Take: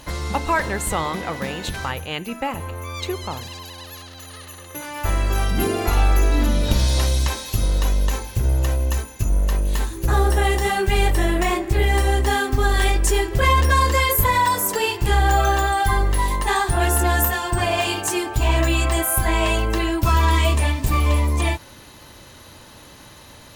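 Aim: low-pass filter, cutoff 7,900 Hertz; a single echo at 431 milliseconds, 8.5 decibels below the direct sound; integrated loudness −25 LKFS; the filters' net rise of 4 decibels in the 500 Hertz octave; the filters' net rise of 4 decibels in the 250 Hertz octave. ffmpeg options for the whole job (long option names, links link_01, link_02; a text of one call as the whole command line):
ffmpeg -i in.wav -af "lowpass=7900,equalizer=frequency=250:width_type=o:gain=4,equalizer=frequency=500:width_type=o:gain=4,aecho=1:1:431:0.376,volume=-6dB" out.wav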